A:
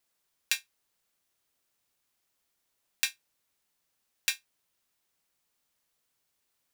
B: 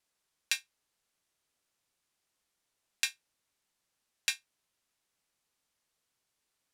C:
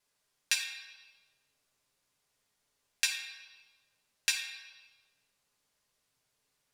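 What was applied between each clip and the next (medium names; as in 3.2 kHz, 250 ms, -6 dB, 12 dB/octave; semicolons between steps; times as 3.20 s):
low-pass 11 kHz 12 dB/octave; trim -1.5 dB
reverberation RT60 1.6 s, pre-delay 5 ms, DRR -1.5 dB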